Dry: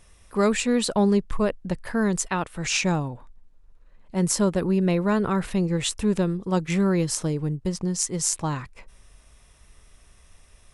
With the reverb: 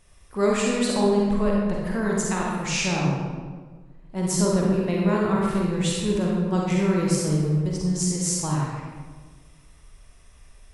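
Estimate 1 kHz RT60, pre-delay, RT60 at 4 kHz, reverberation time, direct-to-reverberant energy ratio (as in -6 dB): 1.4 s, 38 ms, 0.90 s, 1.5 s, -3.5 dB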